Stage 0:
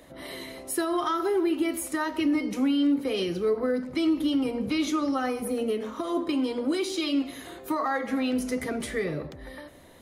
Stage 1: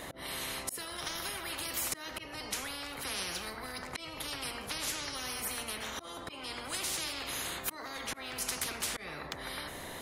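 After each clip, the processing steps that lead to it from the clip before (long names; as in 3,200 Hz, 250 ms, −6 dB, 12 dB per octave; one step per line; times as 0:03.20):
volume swells 414 ms
every bin compressed towards the loudest bin 10 to 1
level −1.5 dB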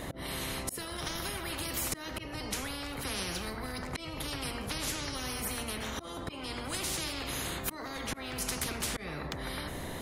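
low-shelf EQ 360 Hz +11 dB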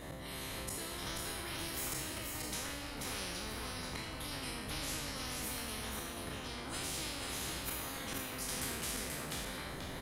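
peak hold with a decay on every bin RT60 1.18 s
single-tap delay 484 ms −4 dB
level −9 dB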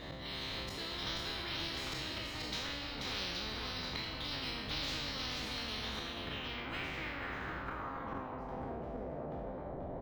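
low-pass filter sweep 4,100 Hz → 670 Hz, 0:05.96–0:08.87
linearly interpolated sample-rate reduction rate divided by 2×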